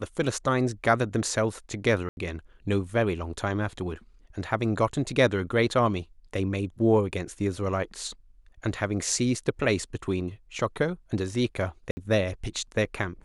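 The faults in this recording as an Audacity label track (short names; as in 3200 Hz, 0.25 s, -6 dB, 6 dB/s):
2.090000	2.170000	gap 81 ms
11.910000	11.970000	gap 60 ms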